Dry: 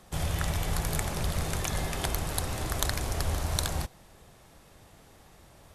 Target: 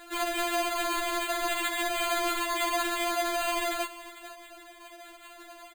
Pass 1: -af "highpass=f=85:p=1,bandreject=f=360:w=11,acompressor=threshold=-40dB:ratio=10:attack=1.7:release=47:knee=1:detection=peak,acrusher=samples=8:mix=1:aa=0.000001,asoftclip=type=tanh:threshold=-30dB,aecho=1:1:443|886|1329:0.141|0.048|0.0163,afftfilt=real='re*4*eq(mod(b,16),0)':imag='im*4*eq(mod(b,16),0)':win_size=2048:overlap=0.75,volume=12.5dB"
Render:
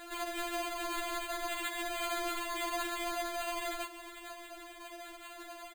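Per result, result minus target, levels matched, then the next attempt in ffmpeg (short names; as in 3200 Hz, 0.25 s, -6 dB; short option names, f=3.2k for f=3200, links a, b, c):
compressor: peak gain reduction +7 dB; 125 Hz band +5.5 dB
-af "highpass=f=85:p=1,bandreject=f=360:w=11,acompressor=threshold=-32dB:ratio=10:attack=1.7:release=47:knee=1:detection=peak,acrusher=samples=8:mix=1:aa=0.000001,asoftclip=type=tanh:threshold=-30dB,aecho=1:1:443|886|1329:0.141|0.048|0.0163,afftfilt=real='re*4*eq(mod(b,16),0)':imag='im*4*eq(mod(b,16),0)':win_size=2048:overlap=0.75,volume=12.5dB"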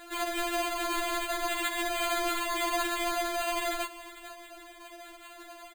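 125 Hz band +4.0 dB
-af "highpass=f=270:p=1,bandreject=f=360:w=11,acompressor=threshold=-32dB:ratio=10:attack=1.7:release=47:knee=1:detection=peak,acrusher=samples=8:mix=1:aa=0.000001,asoftclip=type=tanh:threshold=-30dB,aecho=1:1:443|886|1329:0.141|0.048|0.0163,afftfilt=real='re*4*eq(mod(b,16),0)':imag='im*4*eq(mod(b,16),0)':win_size=2048:overlap=0.75,volume=12.5dB"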